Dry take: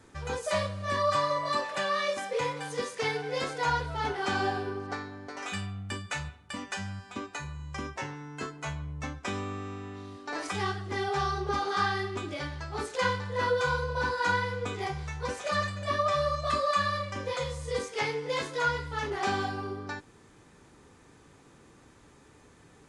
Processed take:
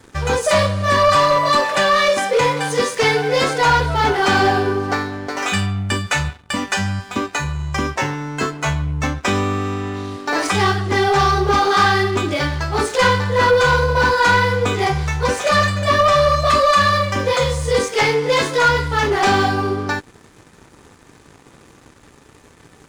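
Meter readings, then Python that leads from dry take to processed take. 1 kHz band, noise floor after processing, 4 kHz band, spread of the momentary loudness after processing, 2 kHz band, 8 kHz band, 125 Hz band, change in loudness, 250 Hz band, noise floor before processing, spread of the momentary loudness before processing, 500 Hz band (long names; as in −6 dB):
+14.5 dB, −48 dBFS, +15.0 dB, 9 LU, +14.5 dB, +15.5 dB, +15.5 dB, +14.5 dB, +15.0 dB, −57 dBFS, 11 LU, +14.5 dB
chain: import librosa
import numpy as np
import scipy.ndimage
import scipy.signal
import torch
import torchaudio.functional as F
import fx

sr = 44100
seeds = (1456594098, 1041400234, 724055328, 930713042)

y = fx.leveller(x, sr, passes=2)
y = y * 10.0 ** (8.5 / 20.0)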